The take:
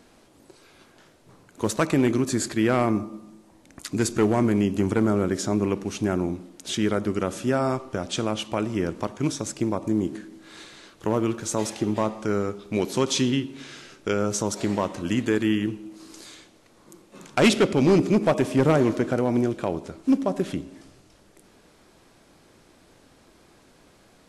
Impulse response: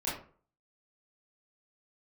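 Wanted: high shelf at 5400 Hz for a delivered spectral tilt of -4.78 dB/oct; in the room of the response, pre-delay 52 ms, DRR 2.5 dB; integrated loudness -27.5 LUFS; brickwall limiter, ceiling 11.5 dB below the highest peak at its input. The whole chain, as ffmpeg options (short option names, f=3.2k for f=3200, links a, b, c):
-filter_complex "[0:a]highshelf=f=5.4k:g=6,alimiter=limit=-20dB:level=0:latency=1,asplit=2[a][b];[1:a]atrim=start_sample=2205,adelay=52[c];[b][c]afir=irnorm=-1:irlink=0,volume=-8dB[d];[a][d]amix=inputs=2:normalize=0,volume=1dB"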